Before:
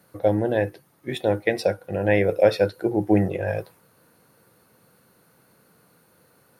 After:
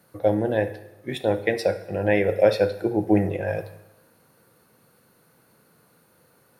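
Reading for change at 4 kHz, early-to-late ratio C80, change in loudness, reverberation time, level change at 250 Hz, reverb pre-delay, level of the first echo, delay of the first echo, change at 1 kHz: -0.5 dB, 15.5 dB, -0.5 dB, 0.95 s, -0.5 dB, 5 ms, no echo, no echo, -0.5 dB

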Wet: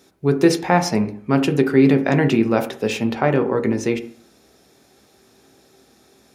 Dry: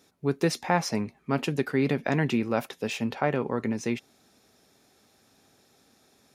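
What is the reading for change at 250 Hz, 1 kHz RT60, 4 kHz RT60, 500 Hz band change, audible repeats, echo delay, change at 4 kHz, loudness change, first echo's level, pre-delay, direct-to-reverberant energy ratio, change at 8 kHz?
+10.5 dB, 0.50 s, 0.50 s, +10.0 dB, no echo, no echo, +6.5 dB, +9.5 dB, no echo, 15 ms, 11.0 dB, +6.5 dB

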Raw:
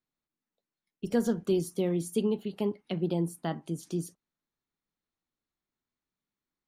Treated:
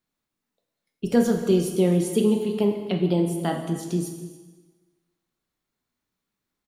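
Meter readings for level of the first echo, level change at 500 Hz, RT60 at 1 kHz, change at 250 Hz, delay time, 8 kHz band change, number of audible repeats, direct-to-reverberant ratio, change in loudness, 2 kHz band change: -18.5 dB, +8.0 dB, 1.3 s, +8.0 dB, 283 ms, +8.0 dB, 1, 3.5 dB, +8.0 dB, +8.0 dB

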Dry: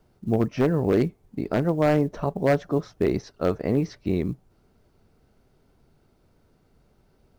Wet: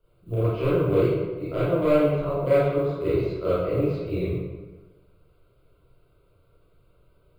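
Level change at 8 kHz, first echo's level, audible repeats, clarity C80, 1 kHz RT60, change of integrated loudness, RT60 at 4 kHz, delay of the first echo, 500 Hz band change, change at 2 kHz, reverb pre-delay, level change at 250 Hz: no reading, no echo, no echo, 0.5 dB, 1.3 s, +0.5 dB, 0.85 s, no echo, +2.5 dB, -2.0 dB, 26 ms, -2.5 dB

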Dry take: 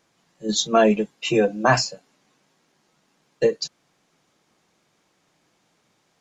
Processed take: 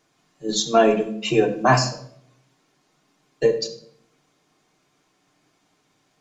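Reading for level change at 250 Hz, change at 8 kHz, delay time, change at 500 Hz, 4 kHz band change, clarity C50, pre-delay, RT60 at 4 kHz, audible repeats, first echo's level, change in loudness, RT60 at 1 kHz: -0.5 dB, no reading, no echo, +1.0 dB, -0.5 dB, 11.5 dB, 3 ms, 0.50 s, no echo, no echo, +0.5 dB, 0.60 s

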